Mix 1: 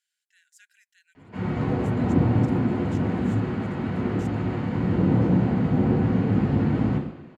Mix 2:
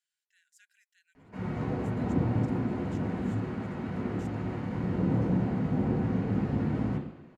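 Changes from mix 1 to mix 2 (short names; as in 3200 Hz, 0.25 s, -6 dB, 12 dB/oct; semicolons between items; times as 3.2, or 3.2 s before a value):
speech -6.5 dB; background: send -7.5 dB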